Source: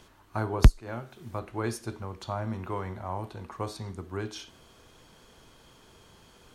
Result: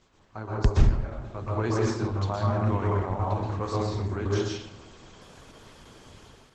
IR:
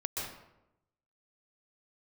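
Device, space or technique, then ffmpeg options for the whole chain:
speakerphone in a meeting room: -filter_complex "[1:a]atrim=start_sample=2205[s0];[0:a][s0]afir=irnorm=-1:irlink=0,dynaudnorm=f=190:g=5:m=2.66,volume=0.562" -ar 48000 -c:a libopus -b:a 12k

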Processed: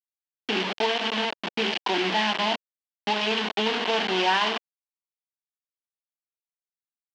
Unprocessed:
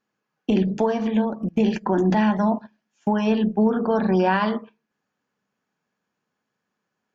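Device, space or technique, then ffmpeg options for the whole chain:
hand-held game console: -af "acrusher=bits=3:mix=0:aa=0.000001,highpass=460,equalizer=f=550:t=q:w=4:g=-9,equalizer=f=1300:t=q:w=4:g=-6,equalizer=f=3000:t=q:w=4:g=8,lowpass=f=4700:w=0.5412,lowpass=f=4700:w=1.3066"

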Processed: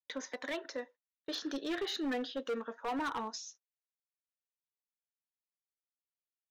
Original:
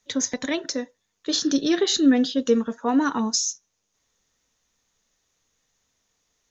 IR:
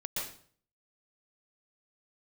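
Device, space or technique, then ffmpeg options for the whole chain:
walkie-talkie: -af "highpass=530,lowpass=2500,asoftclip=type=hard:threshold=0.0501,agate=range=0.0126:threshold=0.00355:ratio=16:detection=peak,volume=0.531"

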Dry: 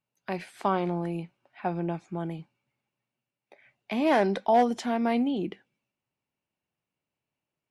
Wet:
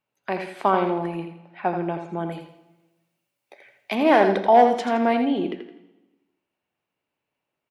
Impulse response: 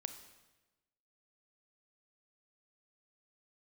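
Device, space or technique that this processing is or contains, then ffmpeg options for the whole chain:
filtered reverb send: -filter_complex "[0:a]asettb=1/sr,asplit=3[s0][s1][s2];[s0]atrim=end=2.324[s3];[s1]atrim=start=2.32:end=3.95,asetpts=PTS-STARTPTS,afade=t=in:d=0.004:c=qsin,afade=t=out:st=1.626:d=0.004:c=qsin,bass=f=250:g=-2,treble=f=4000:g=13[s4];[s2]atrim=start=3.946[s5];[s3][s4]acrossfade=d=0.004:c1=hsin:c2=qsin[s6];[s6][s5]acrossfade=d=0.004:c1=qsin:c2=hsin,aecho=1:1:83|166|249|332:0.398|0.123|0.0383|0.0119,asplit=2[s7][s8];[s8]highpass=240,lowpass=4000[s9];[1:a]atrim=start_sample=2205[s10];[s9][s10]afir=irnorm=-1:irlink=0,volume=1.58[s11];[s7][s11]amix=inputs=2:normalize=0"

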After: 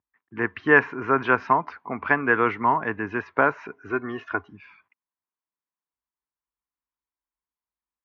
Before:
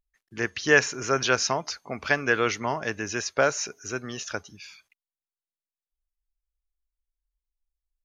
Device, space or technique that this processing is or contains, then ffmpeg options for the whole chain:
bass cabinet: -filter_complex "[0:a]asettb=1/sr,asplit=3[s0][s1][s2];[s0]atrim=end=3.904[s3];[s1]atrim=start=3.9:end=4.49,asetpts=PTS-STARTPTS,afade=t=in:d=0.004:c=qsin,afade=t=out:st=0.586:d=0.004:c=qsin,aecho=1:1:2.8:0.65,atrim=end_sample=26019[s4];[s2]atrim=start=4.486[s5];[s3][s4]acrossfade=d=0.004:c1=hsin:c2=qsin[s6];[s6][s5]acrossfade=d=0.004:c1=qsin:c2=hsin,highpass=f=87:w=0.5412,highpass=f=87:w=1.3066,equalizer=f=130:t=q:w=4:g=-4,equalizer=f=270:t=q:w=4:g=4,equalizer=f=570:t=q:w=4:g=-7,equalizer=f=1000:t=q:w=4:g=10,lowpass=f=2100:w=0.5412,lowpass=f=2100:w=1.3066,volume=1.41"

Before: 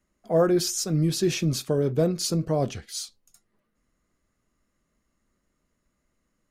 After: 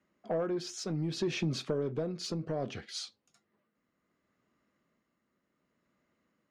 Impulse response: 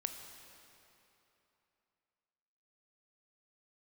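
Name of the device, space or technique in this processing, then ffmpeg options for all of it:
AM radio: -af "highpass=150,lowpass=3700,acompressor=threshold=0.0447:ratio=8,asoftclip=type=tanh:threshold=0.0708,tremolo=f=0.66:d=0.39,volume=1.19"

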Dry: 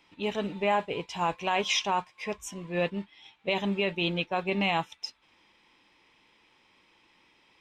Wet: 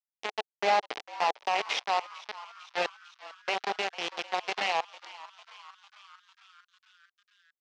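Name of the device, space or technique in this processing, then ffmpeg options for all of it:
hand-held game console: -filter_complex "[0:a]asettb=1/sr,asplit=3[s0][s1][s2];[s0]atrim=end=0.504[s3];[s1]atrim=start=0.5:end=1.45,asetpts=PTS-STARTPTS,afade=t=in:d=0.004:c=qsin,afade=t=out:st=0.946:d=0.004:c=qsin,lowshelf=f=200:g=6[s4];[s2]atrim=start=1.446[s5];[s3][s4]acrossfade=d=0.004:c1=hsin:c2=qsin[s6];[s6][s5]acrossfade=d=0.004:c1=qsin:c2=hsin,acrusher=bits=3:mix=0:aa=0.000001,highpass=410,equalizer=f=430:t=q:w=4:g=4,equalizer=f=770:t=q:w=4:g=9,equalizer=f=2000:t=q:w=4:g=3,lowpass=f=5200:w=0.5412,lowpass=f=5200:w=1.3066,asplit=7[s7][s8][s9][s10][s11][s12][s13];[s8]adelay=450,afreqshift=140,volume=0.126[s14];[s9]adelay=900,afreqshift=280,volume=0.0794[s15];[s10]adelay=1350,afreqshift=420,volume=0.0501[s16];[s11]adelay=1800,afreqshift=560,volume=0.0316[s17];[s12]adelay=2250,afreqshift=700,volume=0.0197[s18];[s13]adelay=2700,afreqshift=840,volume=0.0124[s19];[s7][s14][s15][s16][s17][s18][s19]amix=inputs=7:normalize=0,volume=0.631"

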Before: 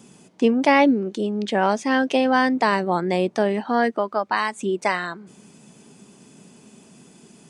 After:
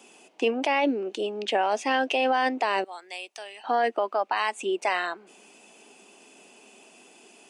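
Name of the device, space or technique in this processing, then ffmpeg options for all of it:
laptop speaker: -filter_complex "[0:a]asettb=1/sr,asplit=3[s0][s1][s2];[s0]atrim=end=2.844[s3];[s1]atrim=start=2.84:end=3.64,asetpts=PTS-STARTPTS,afade=t=in:d=0.004:c=qsin,afade=t=out:st=0.796:d=0.004:c=qsin,aderivative[s4];[s2]atrim=start=3.636[s5];[s3][s4]acrossfade=d=0.004:c1=hsin:c2=qsin[s6];[s6][s5]acrossfade=d=0.004:c1=qsin:c2=hsin,highpass=f=310:w=0.5412,highpass=f=310:w=1.3066,equalizer=f=740:t=o:w=0.5:g=6.5,equalizer=f=2700:t=o:w=0.42:g=11,alimiter=limit=0.237:level=0:latency=1:release=23,volume=0.75"

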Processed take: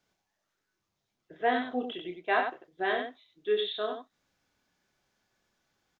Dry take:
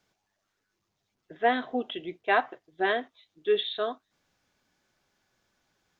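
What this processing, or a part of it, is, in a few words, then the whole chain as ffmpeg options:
slapback doubling: -filter_complex "[0:a]asplit=3[s0][s1][s2];[s1]adelay=28,volume=0.562[s3];[s2]adelay=94,volume=0.501[s4];[s0][s3][s4]amix=inputs=3:normalize=0,volume=0.596"

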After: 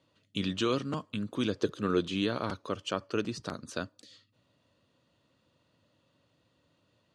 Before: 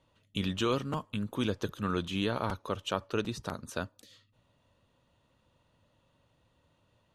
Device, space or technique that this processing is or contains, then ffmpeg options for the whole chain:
car door speaker: -filter_complex "[0:a]asettb=1/sr,asplit=3[s0][s1][s2];[s0]atrim=end=2.694[s3];[s1]atrim=start=2.69:end=3.37,asetpts=PTS-STARTPTS,afade=t=in:d=0.004:c=qsin,afade=t=out:st=0.676:d=0.004:c=qsin,bandreject=f=3800:w=5.8[s4];[s2]atrim=start=3.366[s5];[s3][s4]acrossfade=d=0.004:c1=hsin:c2=qsin[s6];[s6][s5]acrossfade=d=0.004:c1=qsin:c2=hsin,highpass=110,equalizer=f=300:t=q:w=4:g=4,equalizer=f=880:t=q:w=4:g=-6,equalizer=f=4600:t=q:w=4:g=6,lowpass=f=9200:w=0.5412,lowpass=f=9200:w=1.3066,asettb=1/sr,asplit=3[s7][s8][s9];[s7]atrim=end=1.554[s10];[s8]atrim=start=1.55:end=2.14,asetpts=PTS-STARTPTS,afade=t=in:d=0.004:c=qsin,afade=t=out:st=0.586:d=0.004:c=qsin,equalizer=f=420:t=o:w=0.77:g=7.5[s11];[s9]atrim=start=2.136[s12];[s10][s11]acrossfade=d=0.004:c1=hsin:c2=qsin[s13];[s13][s12]acrossfade=d=0.004:c1=qsin:c2=hsin"

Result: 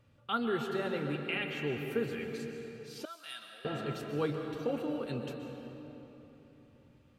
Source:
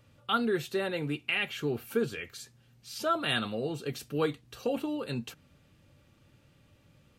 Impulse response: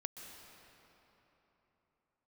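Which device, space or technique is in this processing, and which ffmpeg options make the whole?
swimming-pool hall: -filter_complex "[1:a]atrim=start_sample=2205[s0];[0:a][s0]afir=irnorm=-1:irlink=0,highshelf=f=3800:g=-8,asettb=1/sr,asplit=3[s1][s2][s3];[s1]atrim=end=3.054[s4];[s2]atrim=start=3.05:end=3.65,asetpts=PTS-STARTPTS,afade=t=in:d=0.004:c=qsin,afade=t=out:st=0.596:d=0.004:c=qsin,aderivative[s5];[s3]atrim=start=3.646[s6];[s4][s5]acrossfade=d=0.004:c1=hsin:c2=qsin[s7];[s7][s6]acrossfade=d=0.004:c1=qsin:c2=hsin"

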